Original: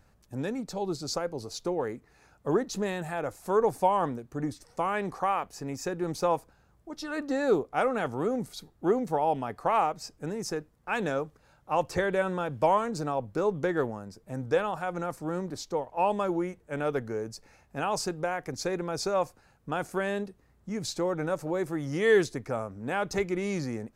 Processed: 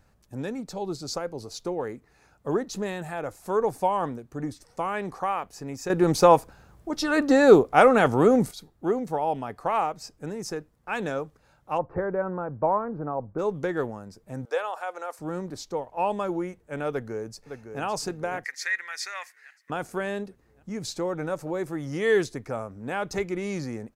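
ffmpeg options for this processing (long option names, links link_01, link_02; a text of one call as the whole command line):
ffmpeg -i in.wav -filter_complex "[0:a]asplit=3[link_01][link_02][link_03];[link_01]afade=type=out:start_time=11.77:duration=0.02[link_04];[link_02]lowpass=frequency=1400:width=0.5412,lowpass=frequency=1400:width=1.3066,afade=type=in:start_time=11.77:duration=0.02,afade=type=out:start_time=13.38:duration=0.02[link_05];[link_03]afade=type=in:start_time=13.38:duration=0.02[link_06];[link_04][link_05][link_06]amix=inputs=3:normalize=0,asettb=1/sr,asplit=3[link_07][link_08][link_09];[link_07]atrim=end=14.454[link_10];[link_08]atrim=start=14.45:end=15.19,asetpts=PTS-STARTPTS,afade=type=in:duration=0.004:curve=qsin,afade=type=out:start_time=0.736:duration=0.004:curve=qsin,highpass=frequency=470:width=0.5412,highpass=frequency=470:width=1.3066[link_11];[link_09]atrim=start=15.186[link_12];[link_10][link_11]acrossfade=duration=0.004:curve1=hsin:curve2=qsin[link_13];[link_13][link_12]acrossfade=duration=0.004:curve1=qsin:curve2=hsin,asplit=2[link_14][link_15];[link_15]afade=type=in:start_time=16.9:duration=0.01,afade=type=out:start_time=17.82:duration=0.01,aecho=0:1:560|1120|1680|2240|2800|3360|3920:0.375837|0.206711|0.113691|0.0625299|0.0343915|0.0189153|0.0104034[link_16];[link_14][link_16]amix=inputs=2:normalize=0,asettb=1/sr,asplit=3[link_17][link_18][link_19];[link_17]atrim=end=18.444[link_20];[link_18]atrim=start=18.44:end=19.7,asetpts=PTS-STARTPTS,afade=type=in:duration=0.004:curve=qsin,afade=type=out:start_time=1.256:duration=0.004:curve=qsin,highpass=frequency=1900:width_type=q:width=14[link_21];[link_19]atrim=start=19.696[link_22];[link_20][link_21]acrossfade=duration=0.004:curve1=hsin:curve2=qsin[link_23];[link_23][link_22]acrossfade=duration=0.004:curve1=qsin:curve2=hsin,asplit=3[link_24][link_25][link_26];[link_24]atrim=end=5.902[link_27];[link_25]atrim=start=5.898:end=8.512,asetpts=PTS-STARTPTS,volume=10.5dB[link_28];[link_26]atrim=start=8.508[link_29];[link_27][link_28]acrossfade=duration=0.004:curve1=hsin:curve2=hsin[link_30];[link_30][link_29]acrossfade=duration=0.004:curve1=hsin:curve2=hsin" out.wav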